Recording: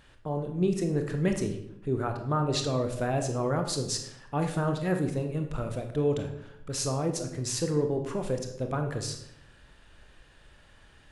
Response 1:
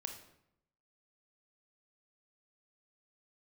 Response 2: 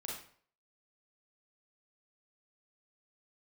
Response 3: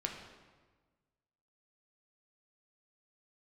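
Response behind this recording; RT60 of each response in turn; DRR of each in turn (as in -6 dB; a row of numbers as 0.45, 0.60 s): 1; 0.80, 0.55, 1.4 s; 4.5, -3.5, 1.0 dB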